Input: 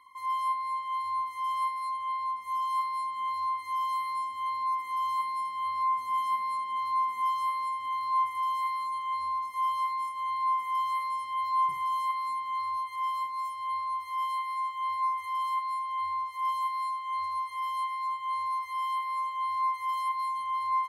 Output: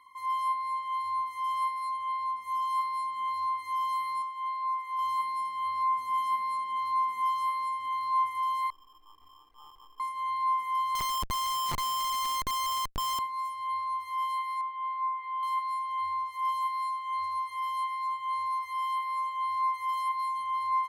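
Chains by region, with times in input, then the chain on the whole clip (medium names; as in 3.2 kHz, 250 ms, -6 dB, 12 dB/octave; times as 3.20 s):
4.22–4.99 s: high-pass 620 Hz + treble shelf 3.3 kHz -9.5 dB
8.70–10.00 s: median filter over 41 samples + tone controls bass -13 dB, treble -10 dB + comb 2.5 ms, depth 45%
10.95–13.19 s: bass shelf 430 Hz +2.5 dB + band-stop 3 kHz, Q 21 + Schmitt trigger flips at -31.5 dBFS
14.61–15.43 s: high-pass 300 Hz + upward compressor, threshold -32 dBFS + distance through air 460 m
whole clip: none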